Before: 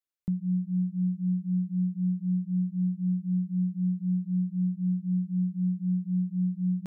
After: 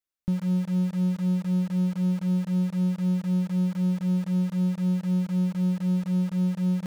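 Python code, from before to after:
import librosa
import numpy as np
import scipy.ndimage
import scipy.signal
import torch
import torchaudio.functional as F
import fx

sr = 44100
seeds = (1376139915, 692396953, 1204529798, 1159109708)

p1 = fx.low_shelf(x, sr, hz=76.0, db=6.0)
p2 = fx.quant_companded(p1, sr, bits=2)
p3 = p1 + (p2 * librosa.db_to_amplitude(-11.0))
y = fx.doppler_dist(p3, sr, depth_ms=0.18)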